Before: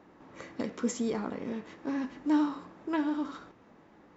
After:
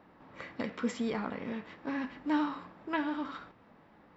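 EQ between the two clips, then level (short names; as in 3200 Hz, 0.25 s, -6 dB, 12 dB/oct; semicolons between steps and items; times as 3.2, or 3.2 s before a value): bell 350 Hz -6 dB 0.8 oct; bell 6600 Hz -15 dB 0.44 oct; dynamic EQ 2200 Hz, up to +5 dB, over -53 dBFS, Q 0.84; 0.0 dB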